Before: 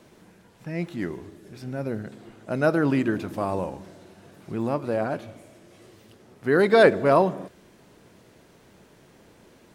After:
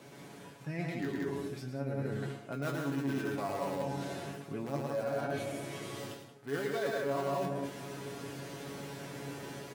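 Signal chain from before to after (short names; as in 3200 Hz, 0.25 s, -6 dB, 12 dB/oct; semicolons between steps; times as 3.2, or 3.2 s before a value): in parallel at -10 dB: wrapped overs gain 17.5 dB; on the sum: resonator 140 Hz, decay 0.21 s, harmonics all, mix 90%; AGC gain up to 6.5 dB; loudspeakers at several distances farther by 38 m -4 dB, 61 m -3 dB; reverse; compressor 6:1, threshold -42 dBFS, peak gain reduction 27 dB; reverse; HPF 100 Hz; gain +8 dB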